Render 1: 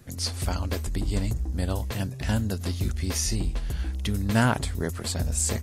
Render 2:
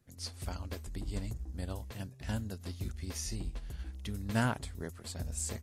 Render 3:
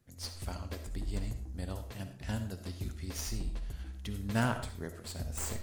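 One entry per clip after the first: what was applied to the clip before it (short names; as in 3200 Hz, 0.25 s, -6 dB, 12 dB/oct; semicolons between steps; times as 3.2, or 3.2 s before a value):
upward expander 1.5:1, over -42 dBFS; gain -8 dB
tracing distortion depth 0.057 ms; reverb RT60 0.50 s, pre-delay 25 ms, DRR 8 dB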